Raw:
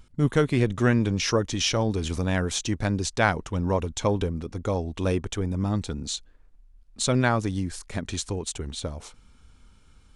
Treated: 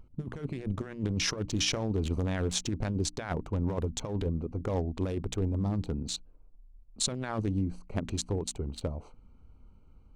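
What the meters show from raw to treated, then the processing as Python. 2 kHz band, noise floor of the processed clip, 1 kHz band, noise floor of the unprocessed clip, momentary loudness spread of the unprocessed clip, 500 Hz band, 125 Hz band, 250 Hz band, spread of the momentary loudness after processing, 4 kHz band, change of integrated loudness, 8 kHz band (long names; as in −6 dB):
−11.5 dB, −56 dBFS, −11.5 dB, −55 dBFS, 10 LU, −8.5 dB, −5.5 dB, −6.5 dB, 7 LU, −4.0 dB, −6.5 dB, −4.0 dB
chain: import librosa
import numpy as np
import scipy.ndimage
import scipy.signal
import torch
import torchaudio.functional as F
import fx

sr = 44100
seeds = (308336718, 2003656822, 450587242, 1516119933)

y = fx.wiener(x, sr, points=25)
y = fx.over_compress(y, sr, threshold_db=-26.0, ratio=-0.5)
y = fx.hum_notches(y, sr, base_hz=60, count=5)
y = F.gain(torch.from_numpy(y), -3.0).numpy()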